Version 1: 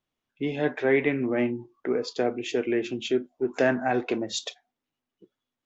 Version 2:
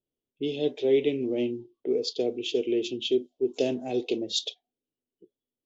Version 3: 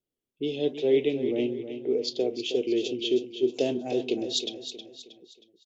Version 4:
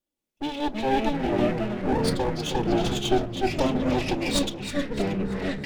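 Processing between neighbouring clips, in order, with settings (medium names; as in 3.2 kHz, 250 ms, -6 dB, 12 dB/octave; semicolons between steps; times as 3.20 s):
level-controlled noise filter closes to 1.2 kHz, open at -20.5 dBFS; FFT filter 210 Hz 0 dB, 430 Hz +8 dB, 1.6 kHz -25 dB, 3.1 kHz +13 dB; trim -6 dB
vibrato 2.8 Hz 29 cents; on a send: feedback delay 316 ms, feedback 41%, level -10 dB
comb filter that takes the minimum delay 3.5 ms; ever faster or slower copies 185 ms, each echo -5 st, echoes 3; trim +2.5 dB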